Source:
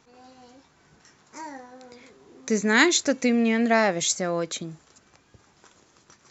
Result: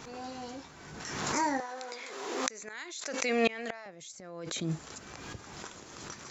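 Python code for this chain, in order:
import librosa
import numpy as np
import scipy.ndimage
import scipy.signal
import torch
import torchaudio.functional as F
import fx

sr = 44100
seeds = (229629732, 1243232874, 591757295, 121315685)

y = fx.highpass(x, sr, hz=610.0, slope=12, at=(1.6, 3.86))
y = fx.gate_flip(y, sr, shuts_db=-21.0, range_db=-33)
y = fx.pre_swell(y, sr, db_per_s=37.0)
y = y * librosa.db_to_amplitude(8.5)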